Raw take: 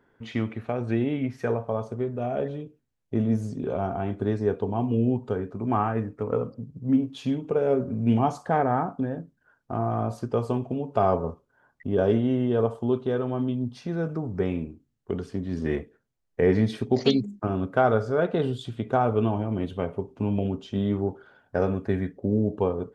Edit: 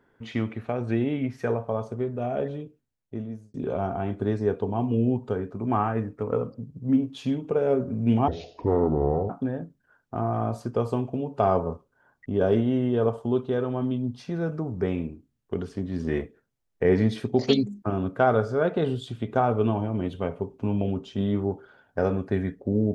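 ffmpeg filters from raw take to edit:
-filter_complex "[0:a]asplit=4[a][b][c][d];[a]atrim=end=3.54,asetpts=PTS-STARTPTS,afade=t=out:st=2.6:d=0.94[e];[b]atrim=start=3.54:end=8.284,asetpts=PTS-STARTPTS,afade=t=in:d=0.004:c=hsin[f];[c]atrim=start=8.28:end=8.87,asetpts=PTS-STARTPTS,asetrate=25578,aresample=44100,atrim=end_sample=44860,asetpts=PTS-STARTPTS[g];[d]atrim=start=8.866[h];[e][f]concat=n=2:v=0:a=1[i];[i][g]acrossfade=d=0.004:c1=hsin:c2=hsin[j];[j][h]acrossfade=d=0.004:c1=hsin:c2=hsin"

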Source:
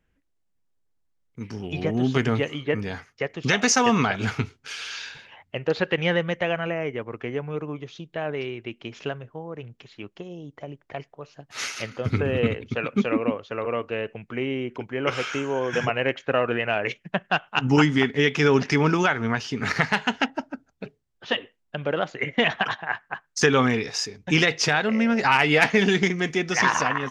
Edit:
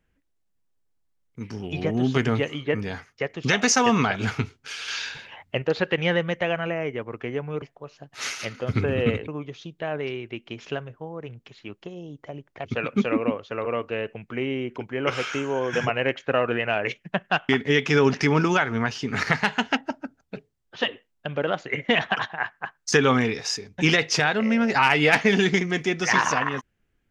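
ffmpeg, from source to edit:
-filter_complex "[0:a]asplit=7[a][b][c][d][e][f][g];[a]atrim=end=4.882[h];[b]atrim=start=4.878:end=5.622,asetpts=PTS-STARTPTS,volume=4.5dB[i];[c]atrim=start=5.618:end=7.622[j];[d]atrim=start=10.988:end=12.652[k];[e]atrim=start=7.618:end=10.992[l];[f]atrim=start=12.648:end=17.492[m];[g]atrim=start=17.978[n];[h][i]acrossfade=d=0.004:c1=hsin:c2=hsin[o];[o][j]acrossfade=d=0.004:c1=hsin:c2=hsin[p];[p][k]acrossfade=d=0.004:c1=hsin:c2=hsin[q];[q][l]acrossfade=d=0.004:c1=hsin:c2=hsin[r];[r][m]acrossfade=d=0.004:c1=hsin:c2=hsin[s];[s][n]acrossfade=d=0.004:c1=hsin:c2=hsin"

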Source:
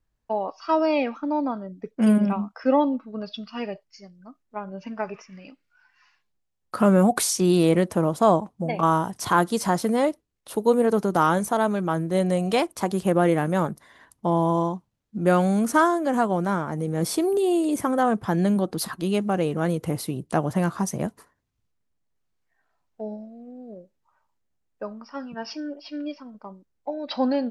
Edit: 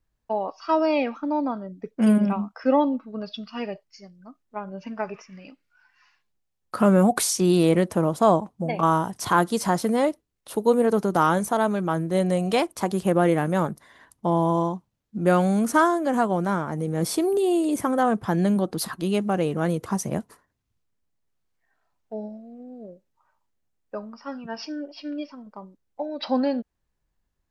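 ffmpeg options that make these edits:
-filter_complex "[0:a]asplit=2[a][b];[a]atrim=end=19.862[c];[b]atrim=start=20.738[d];[c][d]acrossfade=d=0.004:c1=hsin:c2=hsin"

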